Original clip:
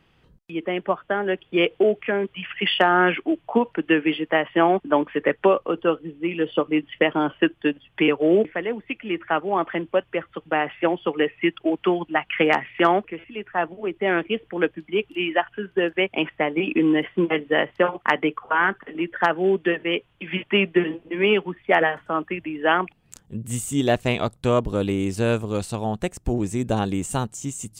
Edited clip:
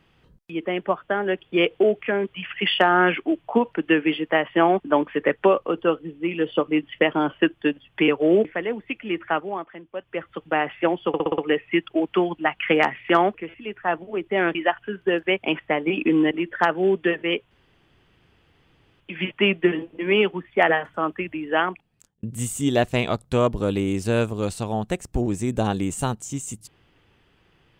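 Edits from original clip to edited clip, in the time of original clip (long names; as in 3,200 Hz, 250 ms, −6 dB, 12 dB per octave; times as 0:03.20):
0:09.29–0:10.31: duck −14.5 dB, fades 0.38 s
0:11.08: stutter 0.06 s, 6 plays
0:14.25–0:15.25: remove
0:17.01–0:18.92: remove
0:20.12: splice in room tone 1.49 s
0:22.54–0:23.35: fade out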